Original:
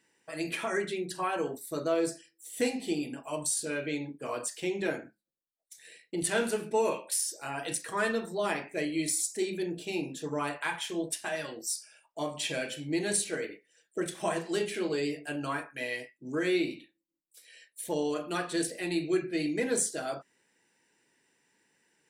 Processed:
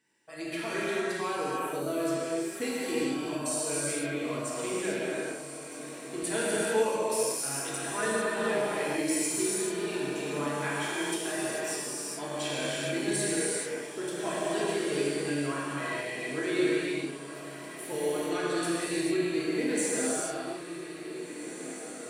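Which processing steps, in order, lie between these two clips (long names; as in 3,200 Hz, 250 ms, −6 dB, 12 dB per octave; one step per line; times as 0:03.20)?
on a send: feedback delay with all-pass diffusion 1,806 ms, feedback 59%, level −11 dB
on the sum: reverb whose tail is shaped and stops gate 470 ms flat, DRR −6.5 dB
level −6 dB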